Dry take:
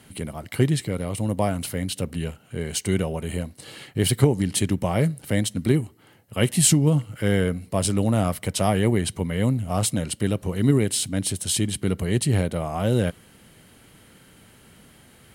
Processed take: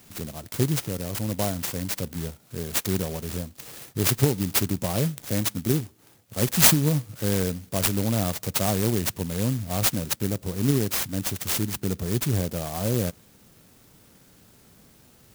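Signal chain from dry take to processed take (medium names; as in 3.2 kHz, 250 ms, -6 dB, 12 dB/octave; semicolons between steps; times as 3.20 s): treble shelf 4.4 kHz +10 dB, from 10.16 s +4 dB; sampling jitter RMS 0.14 ms; trim -3.5 dB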